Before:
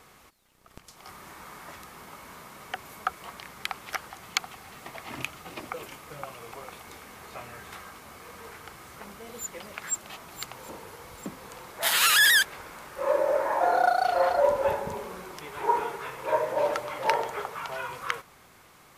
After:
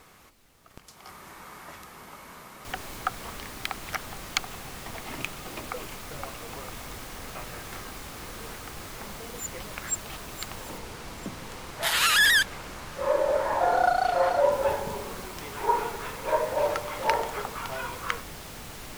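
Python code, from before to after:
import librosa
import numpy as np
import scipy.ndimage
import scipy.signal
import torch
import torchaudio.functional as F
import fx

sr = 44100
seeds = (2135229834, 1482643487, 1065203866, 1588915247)

y = fx.noise_floor_step(x, sr, seeds[0], at_s=2.65, before_db=-63, after_db=-41, tilt_db=3.0)
y = fx.high_shelf(y, sr, hz=11000.0, db=-9.5, at=(10.78, 14.52))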